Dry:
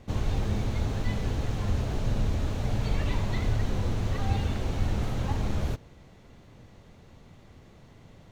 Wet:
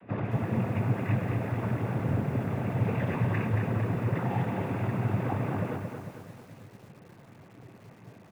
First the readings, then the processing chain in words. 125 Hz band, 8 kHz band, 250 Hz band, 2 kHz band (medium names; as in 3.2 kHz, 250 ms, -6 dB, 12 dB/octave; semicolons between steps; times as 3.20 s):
+0.5 dB, under -10 dB, +3.5 dB, +2.5 dB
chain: steep low-pass 2.4 kHz 48 dB/octave; in parallel at -6 dB: overload inside the chain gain 28 dB; on the sum: delay 96 ms -21 dB; noise-vocoded speech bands 16; bit-crushed delay 225 ms, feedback 55%, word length 9-bit, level -5.5 dB